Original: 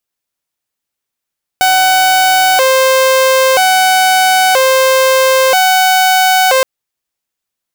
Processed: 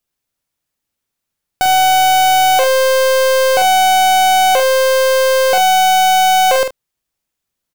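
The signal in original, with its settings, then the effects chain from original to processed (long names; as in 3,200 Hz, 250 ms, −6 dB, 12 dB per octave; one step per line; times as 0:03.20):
siren hi-lo 525–750 Hz 0.51 per second saw −4.5 dBFS 5.02 s
low-shelf EQ 270 Hz +8 dB
soft clipping −9 dBFS
ambience of single reflections 47 ms −7 dB, 76 ms −17 dB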